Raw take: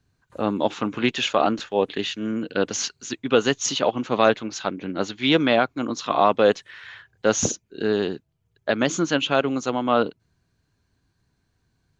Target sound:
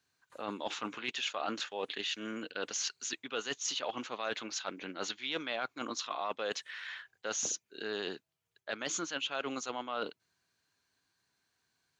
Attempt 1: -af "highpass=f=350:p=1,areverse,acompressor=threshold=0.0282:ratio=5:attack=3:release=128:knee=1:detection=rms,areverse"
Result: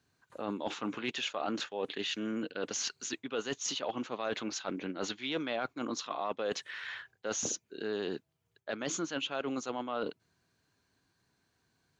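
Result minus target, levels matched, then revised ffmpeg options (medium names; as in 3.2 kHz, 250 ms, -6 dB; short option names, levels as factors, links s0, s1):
250 Hz band +5.0 dB
-af "highpass=f=1400:p=1,areverse,acompressor=threshold=0.0282:ratio=5:attack=3:release=128:knee=1:detection=rms,areverse"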